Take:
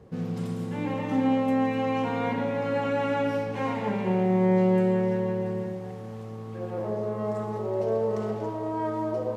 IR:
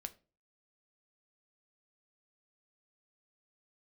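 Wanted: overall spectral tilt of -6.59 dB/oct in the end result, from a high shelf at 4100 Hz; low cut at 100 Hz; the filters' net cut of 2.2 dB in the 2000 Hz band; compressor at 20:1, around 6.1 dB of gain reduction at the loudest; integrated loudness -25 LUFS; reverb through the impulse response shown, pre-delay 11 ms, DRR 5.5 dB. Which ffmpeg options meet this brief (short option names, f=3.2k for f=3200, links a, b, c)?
-filter_complex "[0:a]highpass=100,equalizer=f=2k:t=o:g=-3.5,highshelf=f=4.1k:g=4,acompressor=threshold=-25dB:ratio=20,asplit=2[a][b];[1:a]atrim=start_sample=2205,adelay=11[c];[b][c]afir=irnorm=-1:irlink=0,volume=-2dB[d];[a][d]amix=inputs=2:normalize=0,volume=3dB"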